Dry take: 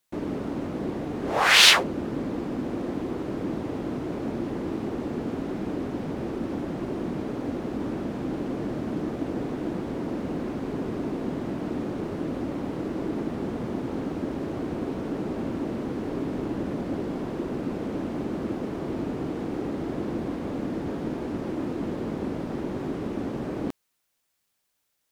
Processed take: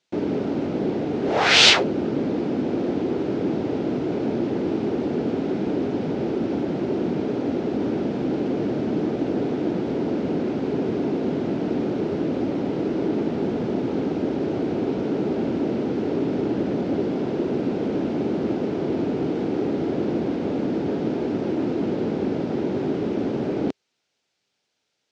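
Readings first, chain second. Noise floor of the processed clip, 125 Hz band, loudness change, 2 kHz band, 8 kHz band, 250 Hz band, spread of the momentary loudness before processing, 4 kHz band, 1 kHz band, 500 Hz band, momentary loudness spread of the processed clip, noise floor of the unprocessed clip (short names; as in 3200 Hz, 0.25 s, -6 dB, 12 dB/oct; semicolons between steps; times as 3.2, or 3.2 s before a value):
-76 dBFS, +4.0 dB, +4.5 dB, +0.5 dB, n/a, +6.0 dB, 1 LU, +2.0 dB, +2.0 dB, +7.5 dB, 1 LU, -76 dBFS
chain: one-sided clip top -26 dBFS; speaker cabinet 110–5900 Hz, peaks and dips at 410 Hz +4 dB, 1100 Hz -8 dB, 1800 Hz -4 dB; gain +6 dB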